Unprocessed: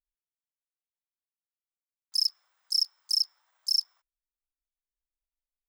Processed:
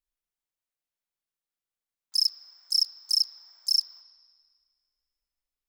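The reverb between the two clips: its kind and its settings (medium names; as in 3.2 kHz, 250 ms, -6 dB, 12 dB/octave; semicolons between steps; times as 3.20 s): spring tank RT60 1.8 s, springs 37/59 ms, chirp 20 ms, DRR 5.5 dB; trim +2 dB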